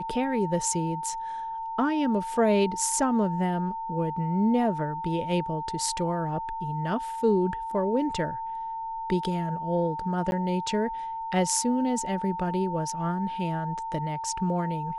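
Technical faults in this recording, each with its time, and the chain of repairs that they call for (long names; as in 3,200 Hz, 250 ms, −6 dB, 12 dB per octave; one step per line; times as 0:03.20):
whistle 900 Hz −31 dBFS
0:10.31–0:10.32: drop-out 11 ms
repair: notch filter 900 Hz, Q 30
repair the gap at 0:10.31, 11 ms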